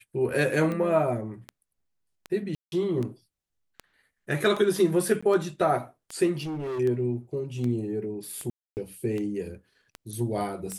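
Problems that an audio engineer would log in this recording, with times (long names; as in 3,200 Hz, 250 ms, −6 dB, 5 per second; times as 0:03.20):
scratch tick 78 rpm −21 dBFS
0:02.55–0:02.72: drop-out 171 ms
0:05.21–0:05.22: drop-out 15 ms
0:06.38–0:06.80: clipping −29.5 dBFS
0:08.50–0:08.77: drop-out 269 ms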